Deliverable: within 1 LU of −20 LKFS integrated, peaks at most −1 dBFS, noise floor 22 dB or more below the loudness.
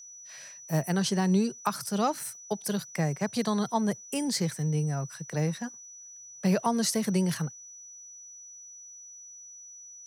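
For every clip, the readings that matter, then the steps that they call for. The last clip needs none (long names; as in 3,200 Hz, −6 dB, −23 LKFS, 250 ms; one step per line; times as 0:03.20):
interfering tone 5,900 Hz; level of the tone −45 dBFS; integrated loudness −29.5 LKFS; sample peak −12.0 dBFS; target loudness −20.0 LKFS
→ notch filter 5,900 Hz, Q 30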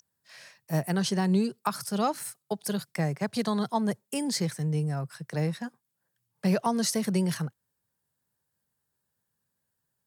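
interfering tone none found; integrated loudness −29.5 LKFS; sample peak −12.0 dBFS; target loudness −20.0 LKFS
→ level +9.5 dB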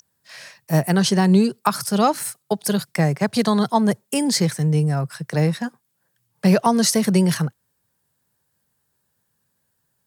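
integrated loudness −20.0 LKFS; sample peak −2.5 dBFS; background noise floor −72 dBFS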